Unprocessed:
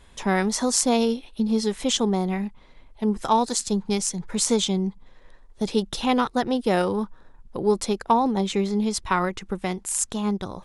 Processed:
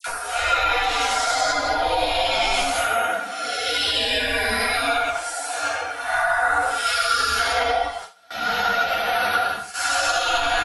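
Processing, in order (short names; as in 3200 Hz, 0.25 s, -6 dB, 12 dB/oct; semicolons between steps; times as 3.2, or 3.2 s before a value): phase scrambler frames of 50 ms; de-hum 387.2 Hz, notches 15; spectral gate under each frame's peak -30 dB weak; high shelf 3000 Hz -5 dB; small resonant body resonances 720/1400 Hz, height 16 dB, ringing for 25 ms; vocal rider within 4 dB 0.5 s; Paulstretch 6×, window 0.10 s, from 8.48; comb 4.2 ms, depth 59%; dispersion lows, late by 76 ms, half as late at 1600 Hz; gate with hold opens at -46 dBFS; maximiser +35.5 dB; ensemble effect; gain -8 dB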